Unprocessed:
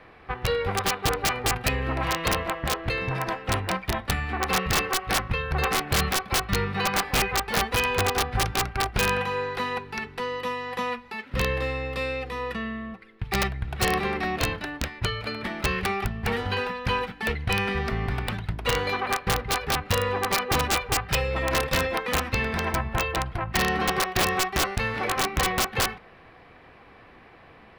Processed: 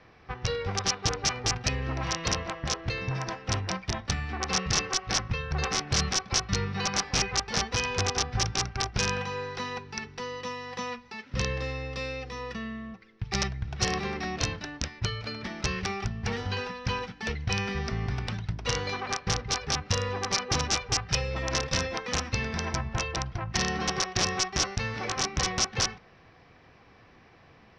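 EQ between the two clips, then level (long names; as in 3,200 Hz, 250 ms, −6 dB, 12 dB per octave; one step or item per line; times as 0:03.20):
transistor ladder low-pass 6,100 Hz, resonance 75%
parametric band 120 Hz +6.5 dB 1.8 octaves
+5.0 dB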